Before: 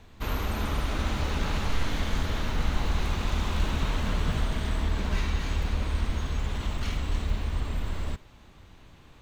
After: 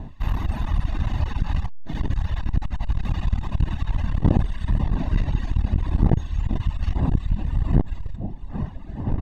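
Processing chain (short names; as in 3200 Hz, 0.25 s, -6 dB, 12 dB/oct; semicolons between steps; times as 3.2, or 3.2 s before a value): wind noise 320 Hz -30 dBFS; LPF 2600 Hz 6 dB/oct; comb 1.1 ms, depth 63%; echo with dull and thin repeats by turns 0.439 s, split 870 Hz, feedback 67%, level -11.5 dB; reverb removal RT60 1.4 s; low shelf 91 Hz +7.5 dB; core saturation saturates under 200 Hz; gain +1.5 dB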